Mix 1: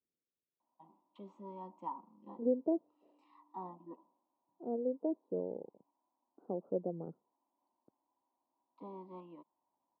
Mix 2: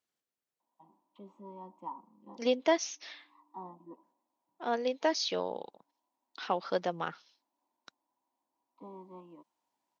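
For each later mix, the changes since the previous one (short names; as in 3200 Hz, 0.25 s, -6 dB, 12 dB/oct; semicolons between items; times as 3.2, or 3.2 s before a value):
second voice: remove inverse Chebyshev low-pass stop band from 2200 Hz, stop band 70 dB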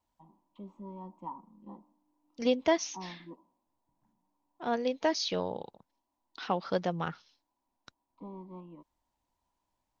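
first voice: entry -0.60 s; master: remove HPF 280 Hz 12 dB/oct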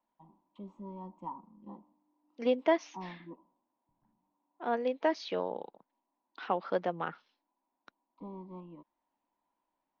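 second voice: add three-band isolator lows -23 dB, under 210 Hz, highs -19 dB, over 3000 Hz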